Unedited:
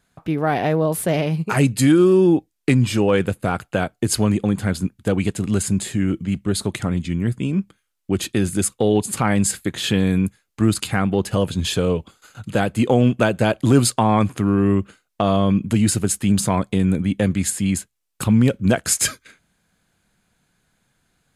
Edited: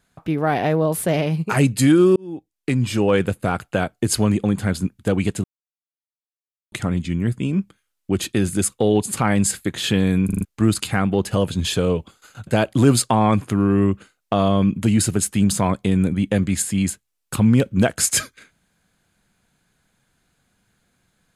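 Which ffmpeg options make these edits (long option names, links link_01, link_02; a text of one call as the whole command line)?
ffmpeg -i in.wav -filter_complex "[0:a]asplit=10[link_01][link_02][link_03][link_04][link_05][link_06][link_07][link_08][link_09][link_10];[link_01]atrim=end=2.16,asetpts=PTS-STARTPTS,afade=type=out:start_time=2.156:duration=0.004:curve=hsin[link_11];[link_02]atrim=start=2.16:end=5.44,asetpts=PTS-STARTPTS,afade=type=in:duration=0.95,afade=type=out:start_time=3.276:duration=0.004:curve=hsin[link_12];[link_03]atrim=start=5.44:end=6.72,asetpts=PTS-STARTPTS,volume=0[link_13];[link_04]atrim=start=6.72:end=10.292,asetpts=PTS-STARTPTS,afade=type=in:duration=0.004:curve=hsin[link_14];[link_05]atrim=start=10.248:end=10.292[link_15];[link_06]atrim=start=10.248:end=10.292[link_16];[link_07]atrim=start=10.248:end=10.292[link_17];[link_08]atrim=start=10.248:end=10.292[link_18];[link_09]atrim=start=10.448:end=12.472[link_19];[link_10]atrim=start=13.348[link_20];[link_11][link_12][link_13][link_14]concat=n=4:v=0:a=1[link_21];[link_21][link_15]acrossfade=duration=0.004:curve1=hsin:curve2=hsin[link_22];[link_22][link_16]acrossfade=duration=0.004:curve1=hsin:curve2=hsin[link_23];[link_23][link_17]acrossfade=duration=0.004:curve1=hsin:curve2=hsin[link_24];[link_24][link_18]acrossfade=duration=0.004:curve1=hsin:curve2=hsin[link_25];[link_25][link_19]acrossfade=duration=0.004:curve1=hsin:curve2=hsin[link_26];[link_26][link_20]acrossfade=duration=0.004:curve1=hsin:curve2=hsin" out.wav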